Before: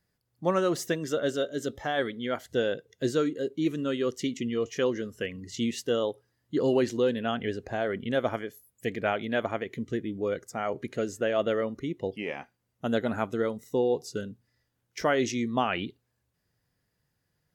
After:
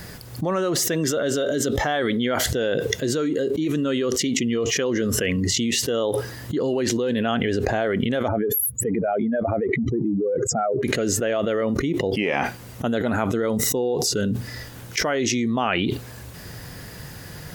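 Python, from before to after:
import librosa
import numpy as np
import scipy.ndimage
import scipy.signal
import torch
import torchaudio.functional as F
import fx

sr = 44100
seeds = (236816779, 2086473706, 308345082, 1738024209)

y = fx.spec_expand(x, sr, power=2.4, at=(8.28, 10.83))
y = fx.env_flatten(y, sr, amount_pct=100)
y = F.gain(torch.from_numpy(y), -1.0).numpy()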